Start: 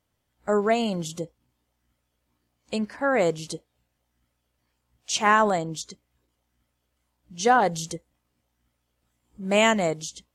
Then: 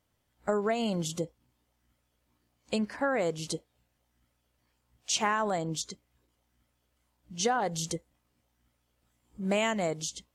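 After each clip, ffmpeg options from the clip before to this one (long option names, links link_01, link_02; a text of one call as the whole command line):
ffmpeg -i in.wav -af "acompressor=threshold=-25dB:ratio=6" out.wav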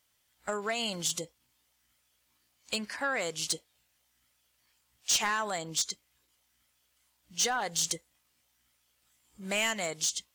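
ffmpeg -i in.wav -af "tiltshelf=frequency=1100:gain=-9.5,asoftclip=type=tanh:threshold=-21.5dB" out.wav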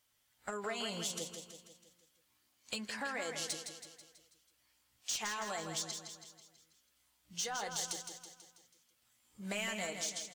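ffmpeg -i in.wav -filter_complex "[0:a]acompressor=threshold=-34dB:ratio=4,flanger=delay=8.1:depth=2.4:regen=-46:speed=0.34:shape=triangular,asplit=2[link_01][link_02];[link_02]aecho=0:1:163|326|489|652|815|978:0.447|0.232|0.121|0.0628|0.0327|0.017[link_03];[link_01][link_03]amix=inputs=2:normalize=0,volume=1dB" out.wav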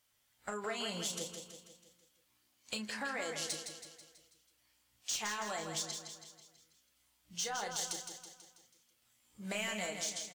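ffmpeg -i in.wav -filter_complex "[0:a]asplit=2[link_01][link_02];[link_02]adelay=33,volume=-9.5dB[link_03];[link_01][link_03]amix=inputs=2:normalize=0" out.wav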